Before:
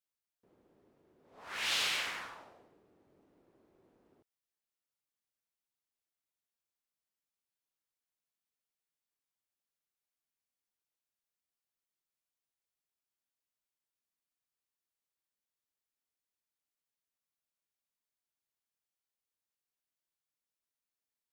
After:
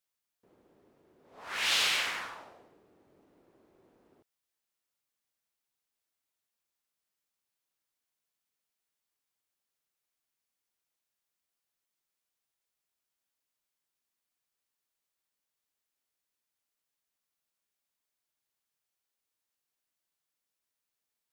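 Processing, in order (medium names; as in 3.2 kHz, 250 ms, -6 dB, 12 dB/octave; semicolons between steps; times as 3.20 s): bass shelf 350 Hz -3 dB; trim +5 dB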